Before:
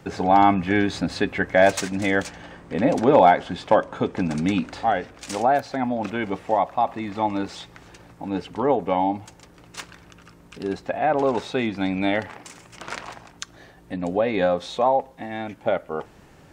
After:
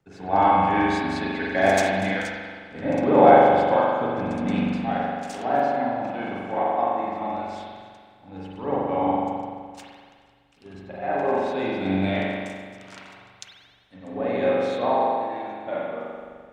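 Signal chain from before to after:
spring reverb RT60 3 s, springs 42 ms, chirp 60 ms, DRR −6.5 dB
multiband upward and downward expander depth 70%
level −8.5 dB

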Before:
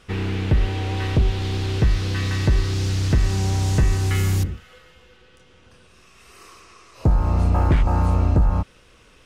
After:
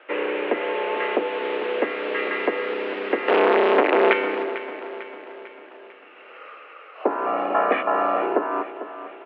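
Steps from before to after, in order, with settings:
0:03.28–0:04.13: leveller curve on the samples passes 5
0:07.26–0:08.22: comb filter 1.8 ms, depth 65%
repeating echo 448 ms, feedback 52%, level −13 dB
single-sideband voice off tune +110 Hz 250–2,600 Hz
level +6 dB

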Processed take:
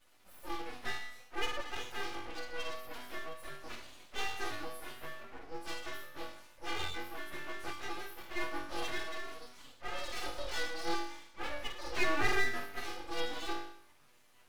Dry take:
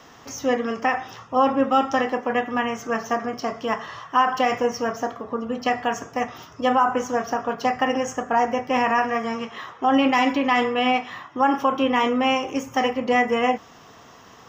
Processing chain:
partials spread apart or drawn together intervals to 121%
0:11.96–0:12.75: flat-topped bell 940 Hz +13.5 dB
resonators tuned to a chord B3 minor, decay 0.67 s
full-wave rectification
level +10.5 dB

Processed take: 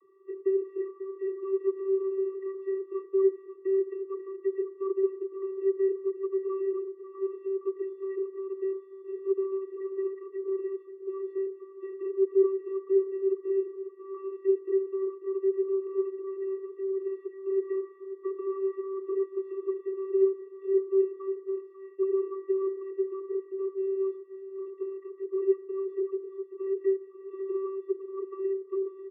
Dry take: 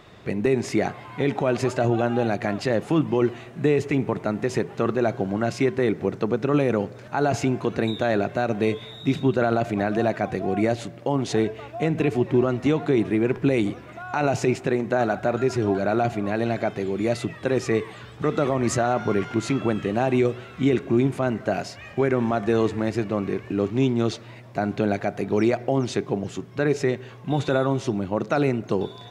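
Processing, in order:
loose part that buzzes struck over −25 dBFS, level −24 dBFS
low-pass filter 1,600 Hz 24 dB per octave
channel vocoder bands 32, square 386 Hz
on a send: single-tap delay 542 ms −12 dB
on the sum: level −6.5 dB

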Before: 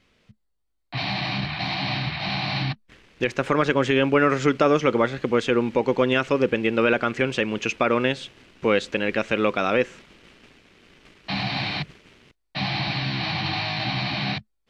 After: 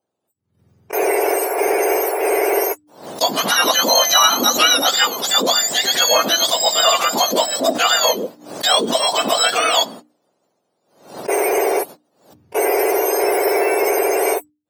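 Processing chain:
frequency axis turned over on the octave scale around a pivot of 1,300 Hz
noise gate −42 dBFS, range −25 dB
mains-hum notches 60/120/180/240/300 Hz
in parallel at −5 dB: soft clipping −20 dBFS, distortion −15 dB
on the sum: background raised ahead of every attack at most 110 dB per second
level +6.5 dB

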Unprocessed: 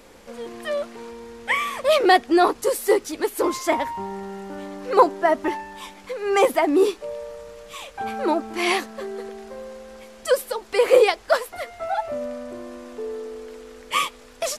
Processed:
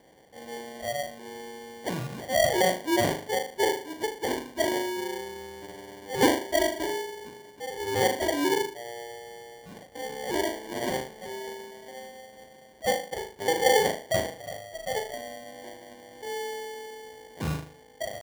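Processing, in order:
low-pass filter 1,600 Hz 12 dB per octave
tempo change 0.8×
low-shelf EQ 420 Hz −7.5 dB
flutter between parallel walls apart 6.6 metres, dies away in 0.45 s
decimation without filtering 34×
high-pass filter 47 Hz
low-shelf EQ 120 Hz −5 dB
level −4.5 dB

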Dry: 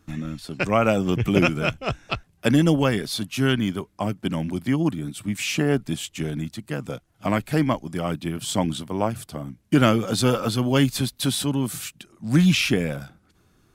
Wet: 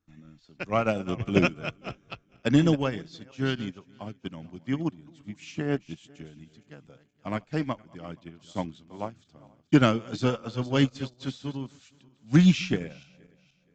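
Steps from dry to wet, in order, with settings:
feedback delay that plays each chunk backwards 237 ms, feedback 52%, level −12 dB
in parallel at −8.5 dB: hard clipping −12 dBFS, distortion −18 dB
on the sum: downsampling to 16,000 Hz
expander for the loud parts 2.5 to 1, over −26 dBFS
level −1.5 dB

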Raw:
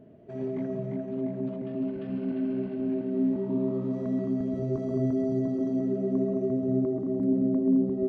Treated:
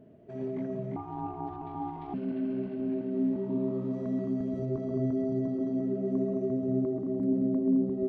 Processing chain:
0:00.96–0:02.14: ring modulation 550 Hz
0:04.65–0:06.05: high-frequency loss of the air 91 metres
level −2.5 dB

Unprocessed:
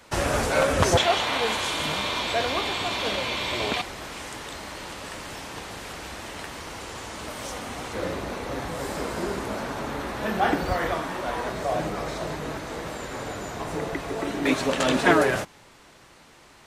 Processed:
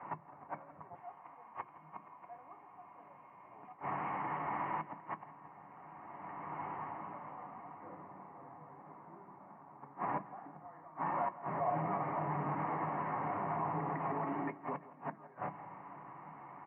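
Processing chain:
source passing by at 0:06.67, 8 m/s, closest 1.6 metres
in parallel at −7.5 dB: sine wavefolder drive 8 dB, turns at −25.5 dBFS
on the sum: comb filter 1 ms, depth 43%
gate with flip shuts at −36 dBFS, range −37 dB
downward compressor 6 to 1, threshold −57 dBFS, peak gain reduction 14 dB
brickwall limiter −54 dBFS, peak gain reduction 9 dB
elliptic low-pass filter 2,600 Hz, stop band 40 dB
parametric band 900 Hz +13.5 dB 1.6 octaves
repeating echo 168 ms, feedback 51%, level −17 dB
on a send at −6 dB: convolution reverb RT60 0.15 s, pre-delay 3 ms
on the sum: low-pass that shuts in the quiet parts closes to 1,500 Hz, open at −34 dBFS
high-pass filter 110 Hz 24 dB per octave
level +17 dB

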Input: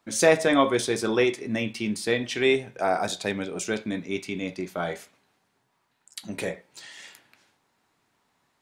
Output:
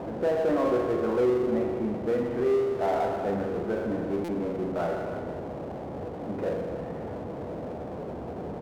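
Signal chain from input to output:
low-pass filter 1,300 Hz 24 dB per octave
parametric band 560 Hz +4.5 dB 1.4 octaves
brickwall limiter −14 dBFS, peak gain reduction 10 dB
spring reverb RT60 1.4 s, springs 40 ms, chirp 45 ms, DRR 2.5 dB
noise in a band 62–680 Hz −36 dBFS
tuned comb filter 490 Hz, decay 0.46 s, mix 60%
power curve on the samples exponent 0.7
slap from a distant wall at 54 metres, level −12 dB
buffer that repeats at 0:04.24, samples 256, times 7

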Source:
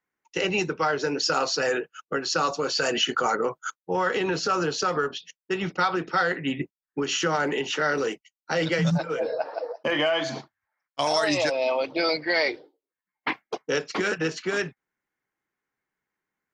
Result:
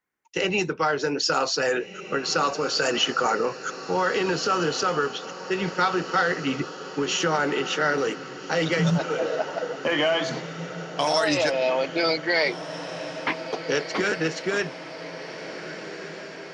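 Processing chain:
feedback delay with all-pass diffusion 1,679 ms, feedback 63%, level −12 dB
level +1 dB

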